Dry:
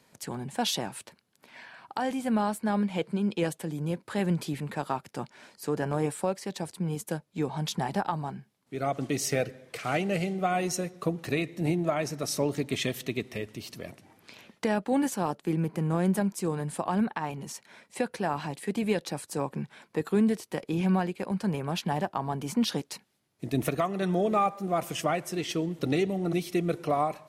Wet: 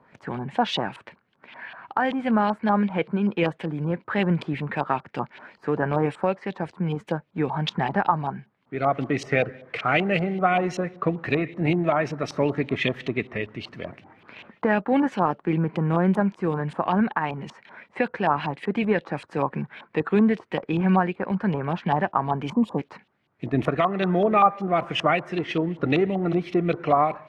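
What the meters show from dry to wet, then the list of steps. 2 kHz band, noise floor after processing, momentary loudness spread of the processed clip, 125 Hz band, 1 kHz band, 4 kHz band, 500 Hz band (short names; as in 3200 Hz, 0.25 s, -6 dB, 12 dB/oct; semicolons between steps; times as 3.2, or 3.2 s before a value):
+8.5 dB, -65 dBFS, 11 LU, +4.5 dB, +7.5 dB, +2.0 dB, +5.5 dB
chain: spectral gain 22.53–22.78, 1200–6700 Hz -24 dB; LFO low-pass saw up 5.2 Hz 960–3300 Hz; gain +4.5 dB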